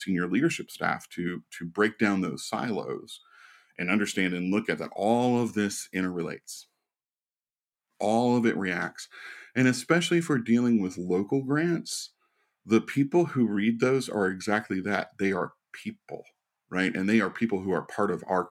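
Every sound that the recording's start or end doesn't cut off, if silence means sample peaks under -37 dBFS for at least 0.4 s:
3.79–6.60 s
8.00–12.06 s
12.68–16.20 s

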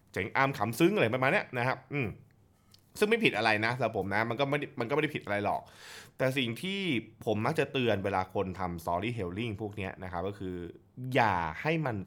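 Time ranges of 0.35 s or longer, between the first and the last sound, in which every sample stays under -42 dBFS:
2.14–2.74 s

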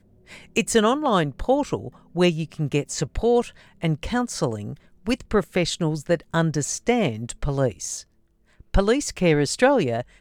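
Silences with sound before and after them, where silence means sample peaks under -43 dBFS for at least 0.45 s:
8.02–8.60 s

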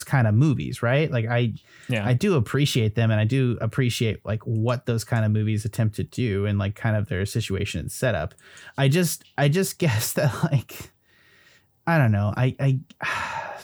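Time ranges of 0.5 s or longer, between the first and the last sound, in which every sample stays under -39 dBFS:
10.86–11.87 s

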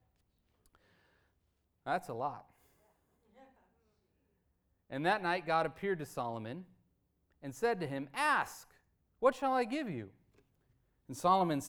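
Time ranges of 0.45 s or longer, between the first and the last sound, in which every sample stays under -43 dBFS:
2.40–4.90 s
6.61–7.44 s
8.60–9.22 s
10.08–11.09 s

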